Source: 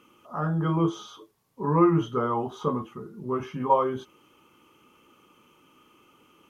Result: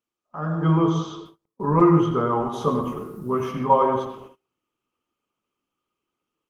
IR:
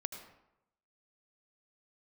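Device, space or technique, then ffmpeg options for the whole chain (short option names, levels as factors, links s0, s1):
speakerphone in a meeting room: -filter_complex "[0:a]asplit=3[s0][s1][s2];[s0]afade=t=out:st=2.52:d=0.02[s3];[s1]aemphasis=mode=production:type=50kf,afade=t=in:st=2.52:d=0.02,afade=t=out:st=3.51:d=0.02[s4];[s2]afade=t=in:st=3.51:d=0.02[s5];[s3][s4][s5]amix=inputs=3:normalize=0[s6];[1:a]atrim=start_sample=2205[s7];[s6][s7]afir=irnorm=-1:irlink=0,dynaudnorm=f=380:g=3:m=2.51,agate=range=0.0355:threshold=0.01:ratio=16:detection=peak,volume=0.841" -ar 48000 -c:a libopus -b:a 20k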